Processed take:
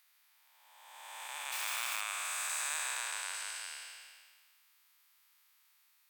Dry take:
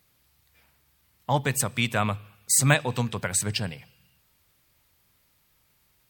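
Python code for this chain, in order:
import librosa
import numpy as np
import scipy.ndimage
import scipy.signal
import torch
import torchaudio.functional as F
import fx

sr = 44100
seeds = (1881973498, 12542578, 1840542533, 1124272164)

y = fx.spec_blur(x, sr, span_ms=771.0)
y = fx.quant_dither(y, sr, seeds[0], bits=6, dither='none', at=(1.52, 2.01))
y = scipy.signal.sosfilt(scipy.signal.butter(4, 980.0, 'highpass', fs=sr, output='sos'), y)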